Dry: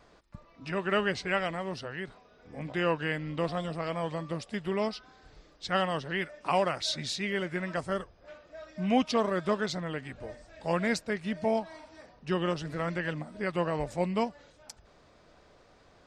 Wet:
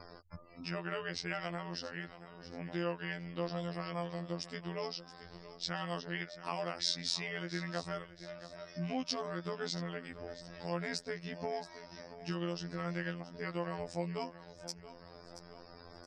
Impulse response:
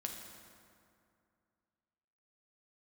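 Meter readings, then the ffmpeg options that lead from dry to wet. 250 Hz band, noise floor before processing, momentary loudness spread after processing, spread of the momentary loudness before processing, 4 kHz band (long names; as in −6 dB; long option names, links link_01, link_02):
−8.5 dB, −60 dBFS, 14 LU, 16 LU, −3.0 dB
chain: -filter_complex "[0:a]alimiter=limit=-19.5dB:level=0:latency=1:release=166,acompressor=threshold=-47dB:ratio=1.5,equalizer=frequency=5200:width=3.6:gain=11.5,afftfilt=real='re*gte(hypot(re,im),0.00112)':imag='im*gte(hypot(re,im),0.00112)':win_size=1024:overlap=0.75,asplit=2[link_01][link_02];[link_02]aecho=0:1:677|1354|2031:0.178|0.0605|0.0206[link_03];[link_01][link_03]amix=inputs=2:normalize=0,acompressor=mode=upward:threshold=-45dB:ratio=2.5,afftfilt=real='hypot(re,im)*cos(PI*b)':imag='0':win_size=2048:overlap=0.75,volume=3dB"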